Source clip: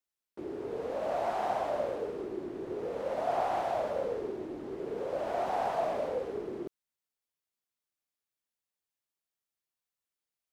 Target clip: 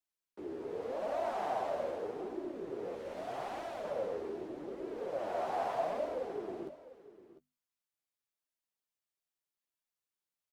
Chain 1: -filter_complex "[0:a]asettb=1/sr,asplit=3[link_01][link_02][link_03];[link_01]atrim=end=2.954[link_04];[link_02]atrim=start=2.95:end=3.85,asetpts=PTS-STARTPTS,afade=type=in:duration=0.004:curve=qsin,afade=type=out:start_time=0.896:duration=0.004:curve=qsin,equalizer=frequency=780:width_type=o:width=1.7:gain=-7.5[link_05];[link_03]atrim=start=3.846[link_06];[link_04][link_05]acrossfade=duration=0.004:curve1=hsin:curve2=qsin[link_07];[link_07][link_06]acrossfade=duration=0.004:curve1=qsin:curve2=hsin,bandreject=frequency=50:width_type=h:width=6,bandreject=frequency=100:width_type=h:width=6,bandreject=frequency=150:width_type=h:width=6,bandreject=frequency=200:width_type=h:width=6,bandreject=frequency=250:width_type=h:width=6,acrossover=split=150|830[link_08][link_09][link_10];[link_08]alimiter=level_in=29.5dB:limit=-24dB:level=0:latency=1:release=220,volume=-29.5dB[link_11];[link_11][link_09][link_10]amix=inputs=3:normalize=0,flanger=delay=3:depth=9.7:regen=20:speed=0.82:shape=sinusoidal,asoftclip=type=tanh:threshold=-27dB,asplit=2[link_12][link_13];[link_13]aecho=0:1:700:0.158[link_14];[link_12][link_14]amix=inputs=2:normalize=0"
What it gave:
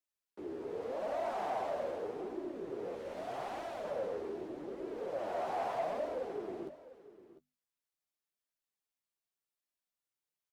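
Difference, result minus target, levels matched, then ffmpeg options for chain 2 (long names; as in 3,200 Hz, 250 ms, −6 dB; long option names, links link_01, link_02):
soft clipping: distortion +19 dB
-filter_complex "[0:a]asettb=1/sr,asplit=3[link_01][link_02][link_03];[link_01]atrim=end=2.954[link_04];[link_02]atrim=start=2.95:end=3.85,asetpts=PTS-STARTPTS,afade=type=in:duration=0.004:curve=qsin,afade=type=out:start_time=0.896:duration=0.004:curve=qsin,equalizer=frequency=780:width_type=o:width=1.7:gain=-7.5[link_05];[link_03]atrim=start=3.846[link_06];[link_04][link_05]acrossfade=duration=0.004:curve1=hsin:curve2=qsin[link_07];[link_07][link_06]acrossfade=duration=0.004:curve1=qsin:curve2=hsin,bandreject=frequency=50:width_type=h:width=6,bandreject=frequency=100:width_type=h:width=6,bandreject=frequency=150:width_type=h:width=6,bandreject=frequency=200:width_type=h:width=6,bandreject=frequency=250:width_type=h:width=6,acrossover=split=150|830[link_08][link_09][link_10];[link_08]alimiter=level_in=29.5dB:limit=-24dB:level=0:latency=1:release=220,volume=-29.5dB[link_11];[link_11][link_09][link_10]amix=inputs=3:normalize=0,flanger=delay=3:depth=9.7:regen=20:speed=0.82:shape=sinusoidal,asoftclip=type=tanh:threshold=-16dB,asplit=2[link_12][link_13];[link_13]aecho=0:1:700:0.158[link_14];[link_12][link_14]amix=inputs=2:normalize=0"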